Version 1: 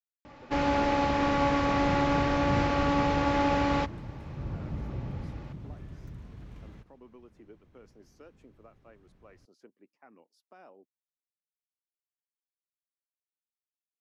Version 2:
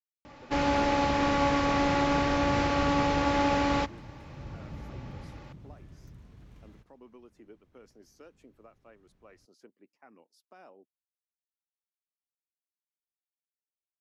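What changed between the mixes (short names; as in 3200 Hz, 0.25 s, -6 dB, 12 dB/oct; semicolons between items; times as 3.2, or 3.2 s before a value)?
second sound -6.5 dB; master: add high shelf 4600 Hz +7 dB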